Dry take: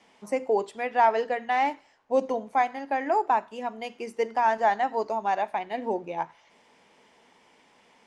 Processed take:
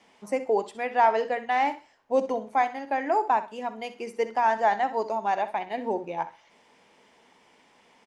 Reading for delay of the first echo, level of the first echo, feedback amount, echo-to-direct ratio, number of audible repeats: 64 ms, −14.0 dB, 21%, −14.0 dB, 2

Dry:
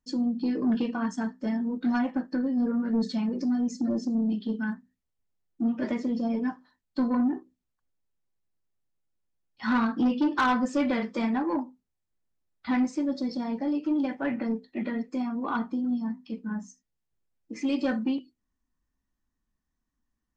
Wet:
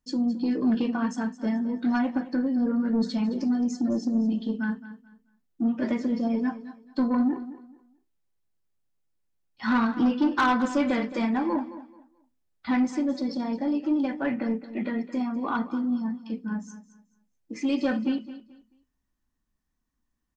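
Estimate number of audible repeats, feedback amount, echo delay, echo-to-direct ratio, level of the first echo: 2, 25%, 217 ms, −14.0 dB, −14.5 dB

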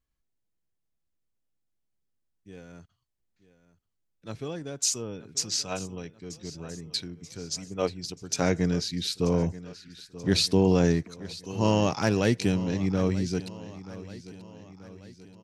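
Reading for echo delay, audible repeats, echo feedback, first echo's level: 933 ms, 4, 52%, −16.5 dB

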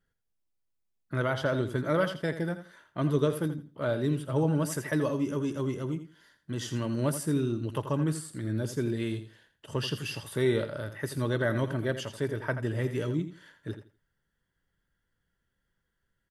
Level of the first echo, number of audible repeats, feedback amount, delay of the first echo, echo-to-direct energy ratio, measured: −11.0 dB, 2, 20%, 83 ms, −11.0 dB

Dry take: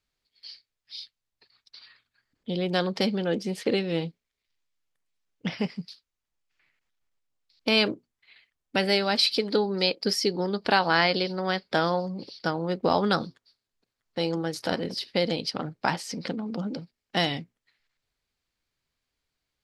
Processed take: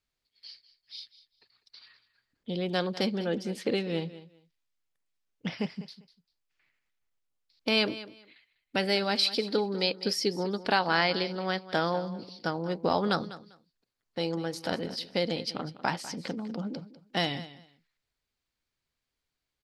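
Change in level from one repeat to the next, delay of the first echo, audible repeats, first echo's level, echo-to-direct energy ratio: −14.5 dB, 198 ms, 2, −16.0 dB, −16.0 dB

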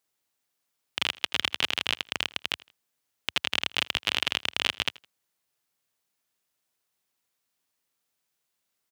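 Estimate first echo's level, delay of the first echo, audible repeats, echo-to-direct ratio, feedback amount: −22.5 dB, 81 ms, 2, −22.0 dB, 32%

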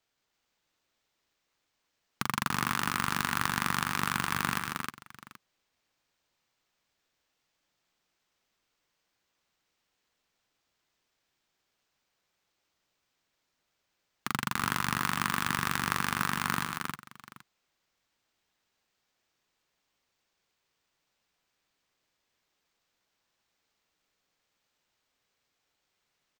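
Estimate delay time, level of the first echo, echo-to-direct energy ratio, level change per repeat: 123 ms, −9.5 dB, −2.5 dB, repeats not evenly spaced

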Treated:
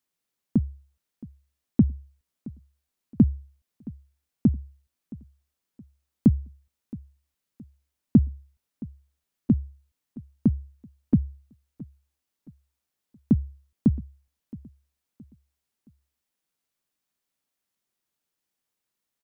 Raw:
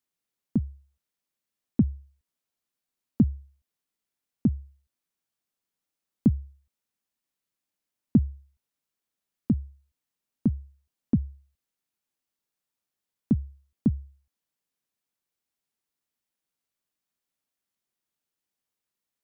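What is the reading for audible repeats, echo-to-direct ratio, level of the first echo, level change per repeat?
2, −19.5 dB, −20.0 dB, −8.5 dB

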